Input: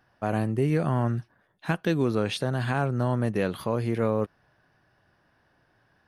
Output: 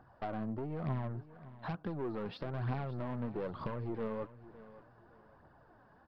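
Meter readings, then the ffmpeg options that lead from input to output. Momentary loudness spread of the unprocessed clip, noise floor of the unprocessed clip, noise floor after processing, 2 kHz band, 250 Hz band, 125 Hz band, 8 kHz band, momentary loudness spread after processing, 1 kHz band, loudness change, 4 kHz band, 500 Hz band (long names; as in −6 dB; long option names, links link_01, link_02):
5 LU, −68 dBFS, −63 dBFS, −16.0 dB, −12.5 dB, −12.0 dB, below −30 dB, 16 LU, −11.0 dB, −12.5 dB, −17.5 dB, −13.0 dB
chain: -af "highshelf=frequency=1600:width_type=q:width=1.5:gain=-11.5,acompressor=threshold=-34dB:ratio=12,aresample=11025,asoftclip=type=tanh:threshold=-36.5dB,aresample=44100,aphaser=in_gain=1:out_gain=1:delay=4.9:decay=0.44:speed=1.1:type=triangular,aecho=1:1:563|1126|1689:0.141|0.0438|0.0136,volume=3dB"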